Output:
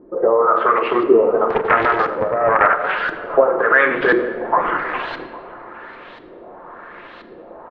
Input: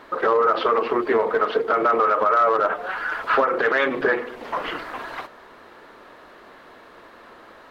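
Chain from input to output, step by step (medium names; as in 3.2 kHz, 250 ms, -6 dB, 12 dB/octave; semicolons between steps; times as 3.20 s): gain riding within 3 dB 0.5 s; LFO low-pass saw up 0.97 Hz 310–4000 Hz; delay 805 ms -21 dB; simulated room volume 2300 m³, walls mixed, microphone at 0.88 m; 1.50–3.01 s: loudspeaker Doppler distortion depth 0.52 ms; trim +2 dB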